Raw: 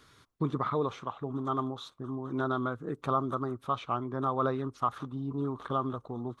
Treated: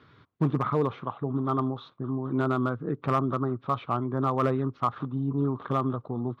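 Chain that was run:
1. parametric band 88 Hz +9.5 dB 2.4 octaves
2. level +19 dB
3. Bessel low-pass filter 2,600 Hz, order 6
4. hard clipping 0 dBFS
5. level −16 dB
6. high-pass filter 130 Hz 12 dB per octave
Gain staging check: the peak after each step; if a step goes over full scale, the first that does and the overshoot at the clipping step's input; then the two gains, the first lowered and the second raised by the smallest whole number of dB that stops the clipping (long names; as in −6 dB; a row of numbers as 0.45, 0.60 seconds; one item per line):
−14.0, +5.0, +5.0, 0.0, −16.0, −13.5 dBFS
step 2, 5.0 dB
step 2 +14 dB, step 5 −11 dB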